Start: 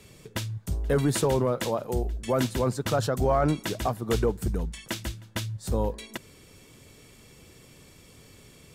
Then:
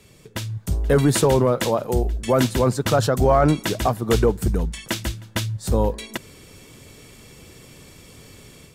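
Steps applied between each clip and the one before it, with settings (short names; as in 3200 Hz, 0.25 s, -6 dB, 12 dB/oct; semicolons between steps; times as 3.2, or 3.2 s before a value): AGC gain up to 7 dB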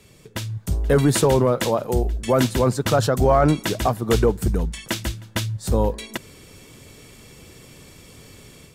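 nothing audible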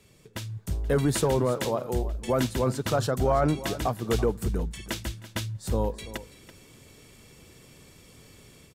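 echo 0.333 s -15.5 dB; gain -7 dB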